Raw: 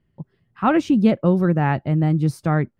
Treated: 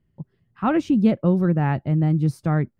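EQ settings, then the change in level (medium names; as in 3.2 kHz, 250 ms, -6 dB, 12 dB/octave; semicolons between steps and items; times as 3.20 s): bass shelf 310 Hz +5.5 dB; -5.0 dB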